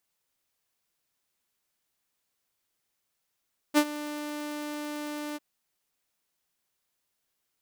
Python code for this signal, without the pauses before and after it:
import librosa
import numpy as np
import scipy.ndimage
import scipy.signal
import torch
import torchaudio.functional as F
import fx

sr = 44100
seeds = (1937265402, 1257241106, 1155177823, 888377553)

y = fx.adsr_tone(sr, wave='saw', hz=297.0, attack_ms=36.0, decay_ms=64.0, sustain_db=-17.0, held_s=1.62, release_ms=28.0, level_db=-14.0)